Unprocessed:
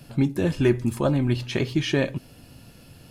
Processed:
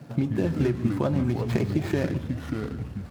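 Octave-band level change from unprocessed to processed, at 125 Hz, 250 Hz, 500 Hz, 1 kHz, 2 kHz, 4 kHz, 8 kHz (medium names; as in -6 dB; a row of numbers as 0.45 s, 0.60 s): -0.5 dB, -1.5 dB, -3.5 dB, -1.0 dB, -5.5 dB, -11.0 dB, -7.5 dB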